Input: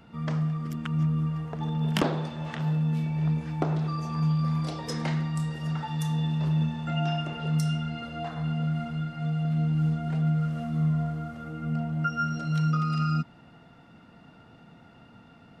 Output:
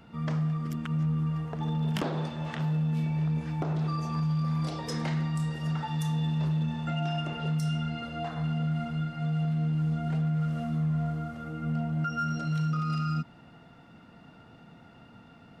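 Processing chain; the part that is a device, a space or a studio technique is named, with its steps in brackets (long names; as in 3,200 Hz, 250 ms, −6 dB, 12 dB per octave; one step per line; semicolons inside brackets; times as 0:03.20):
limiter into clipper (brickwall limiter −22.5 dBFS, peak gain reduction 6.5 dB; hard clipping −23.5 dBFS, distortion −33 dB)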